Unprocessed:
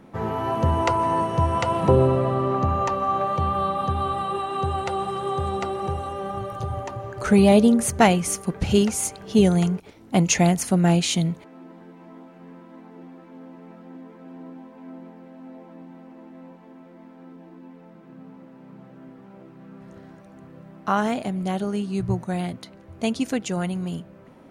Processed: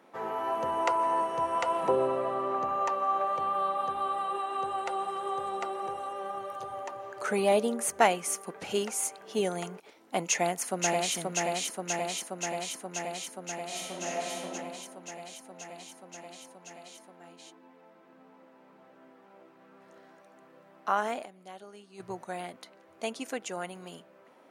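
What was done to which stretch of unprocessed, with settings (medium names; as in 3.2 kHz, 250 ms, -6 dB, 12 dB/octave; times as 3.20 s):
10.26–11.16 s: echo throw 530 ms, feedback 80%, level -2.5 dB
13.66–14.53 s: reverb throw, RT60 1.6 s, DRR -4 dB
21.25–22.00 s: gate -23 dBFS, range -11 dB
whole clip: high-pass 480 Hz 12 dB/octave; dynamic bell 4.2 kHz, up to -5 dB, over -47 dBFS, Q 1.1; trim -4 dB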